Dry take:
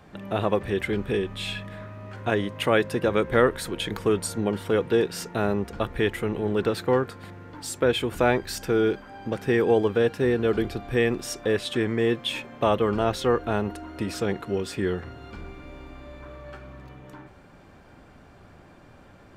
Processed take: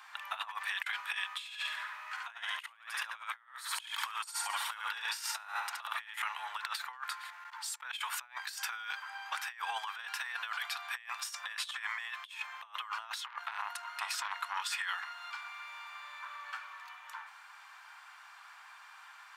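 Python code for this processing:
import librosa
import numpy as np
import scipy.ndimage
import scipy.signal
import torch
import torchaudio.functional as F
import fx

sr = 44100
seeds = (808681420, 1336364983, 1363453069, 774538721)

y = fx.echo_feedback(x, sr, ms=71, feedback_pct=41, wet_db=-4, at=(1.44, 6.22))
y = fx.level_steps(y, sr, step_db=22, at=(7.19, 7.97), fade=0.02)
y = fx.transformer_sat(y, sr, knee_hz=1400.0, at=(13.26, 14.62))
y = scipy.signal.sosfilt(scipy.signal.butter(8, 920.0, 'highpass', fs=sr, output='sos'), y)
y = fx.over_compress(y, sr, threshold_db=-39.0, ratio=-0.5)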